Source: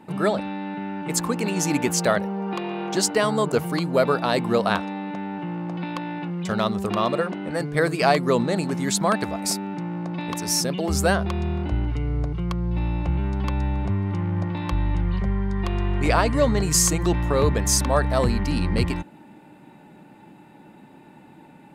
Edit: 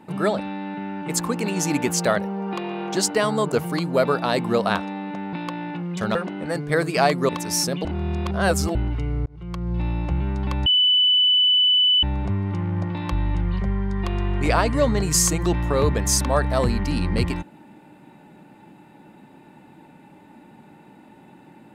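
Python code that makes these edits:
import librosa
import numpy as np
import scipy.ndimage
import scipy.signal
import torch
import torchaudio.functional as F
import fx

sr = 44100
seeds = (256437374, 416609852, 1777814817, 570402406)

y = fx.edit(x, sr, fx.cut(start_s=5.33, length_s=0.48),
    fx.cut(start_s=6.63, length_s=0.57),
    fx.cut(start_s=8.34, length_s=1.92),
    fx.reverse_span(start_s=10.82, length_s=0.9),
    fx.fade_in_span(start_s=12.23, length_s=0.46),
    fx.insert_tone(at_s=13.63, length_s=1.37, hz=2990.0, db=-14.0), tone=tone)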